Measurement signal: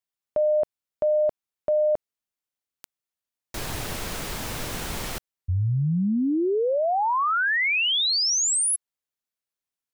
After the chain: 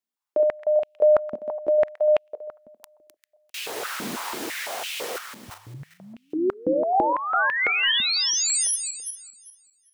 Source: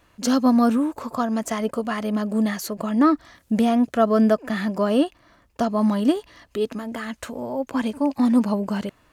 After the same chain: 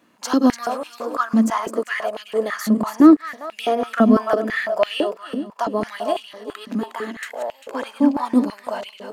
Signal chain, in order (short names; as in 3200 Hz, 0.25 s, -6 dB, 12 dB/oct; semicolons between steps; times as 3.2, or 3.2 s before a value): regenerating reverse delay 0.198 s, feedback 45%, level -7 dB; stepped high-pass 6 Hz 230–2700 Hz; gain -1.5 dB